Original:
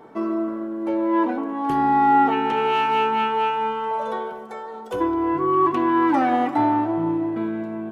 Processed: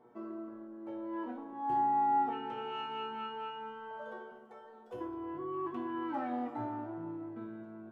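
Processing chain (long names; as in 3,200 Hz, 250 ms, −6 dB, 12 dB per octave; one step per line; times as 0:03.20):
high-shelf EQ 2,400 Hz −11 dB
tuned comb filter 120 Hz, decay 0.5 s, harmonics all, mix 90%
level −3 dB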